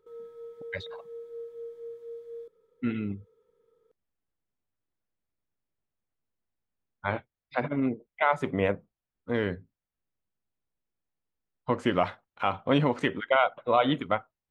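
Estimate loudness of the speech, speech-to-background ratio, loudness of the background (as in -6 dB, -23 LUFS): -28.5 LUFS, 14.5 dB, -43.0 LUFS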